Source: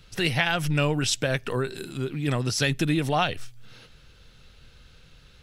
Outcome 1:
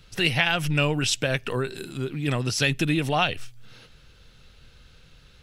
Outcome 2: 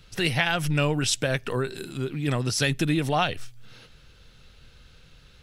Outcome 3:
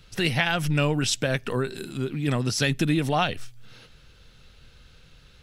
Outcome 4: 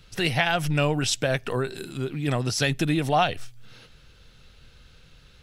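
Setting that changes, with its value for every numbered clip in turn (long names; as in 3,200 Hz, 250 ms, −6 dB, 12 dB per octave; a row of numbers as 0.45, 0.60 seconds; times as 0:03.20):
dynamic equaliser, frequency: 2,700, 9,500, 220, 710 Hertz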